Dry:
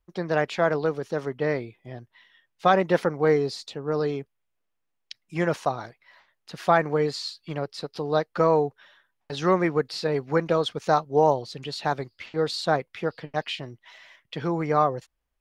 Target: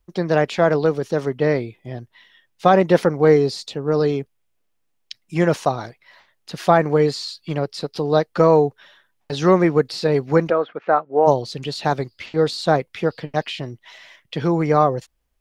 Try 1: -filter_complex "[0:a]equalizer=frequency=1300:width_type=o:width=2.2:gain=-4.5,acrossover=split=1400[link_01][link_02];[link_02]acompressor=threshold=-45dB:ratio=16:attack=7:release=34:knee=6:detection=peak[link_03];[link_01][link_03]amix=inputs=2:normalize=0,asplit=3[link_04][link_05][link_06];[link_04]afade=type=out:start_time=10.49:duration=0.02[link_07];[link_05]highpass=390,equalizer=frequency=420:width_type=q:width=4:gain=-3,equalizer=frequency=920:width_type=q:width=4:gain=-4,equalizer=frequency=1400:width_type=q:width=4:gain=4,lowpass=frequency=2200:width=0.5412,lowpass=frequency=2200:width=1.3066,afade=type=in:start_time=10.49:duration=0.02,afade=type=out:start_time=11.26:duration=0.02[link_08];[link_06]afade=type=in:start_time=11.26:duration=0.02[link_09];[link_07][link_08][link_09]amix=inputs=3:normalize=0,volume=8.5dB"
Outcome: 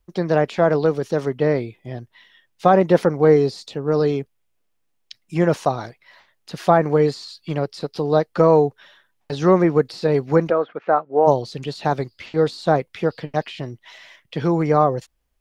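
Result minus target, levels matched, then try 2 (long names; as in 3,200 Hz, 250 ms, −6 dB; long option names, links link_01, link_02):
downward compressor: peak gain reduction +8 dB
-filter_complex "[0:a]equalizer=frequency=1300:width_type=o:width=2.2:gain=-4.5,acrossover=split=1400[link_01][link_02];[link_02]acompressor=threshold=-36.5dB:ratio=16:attack=7:release=34:knee=6:detection=peak[link_03];[link_01][link_03]amix=inputs=2:normalize=0,asplit=3[link_04][link_05][link_06];[link_04]afade=type=out:start_time=10.49:duration=0.02[link_07];[link_05]highpass=390,equalizer=frequency=420:width_type=q:width=4:gain=-3,equalizer=frequency=920:width_type=q:width=4:gain=-4,equalizer=frequency=1400:width_type=q:width=4:gain=4,lowpass=frequency=2200:width=0.5412,lowpass=frequency=2200:width=1.3066,afade=type=in:start_time=10.49:duration=0.02,afade=type=out:start_time=11.26:duration=0.02[link_08];[link_06]afade=type=in:start_time=11.26:duration=0.02[link_09];[link_07][link_08][link_09]amix=inputs=3:normalize=0,volume=8.5dB"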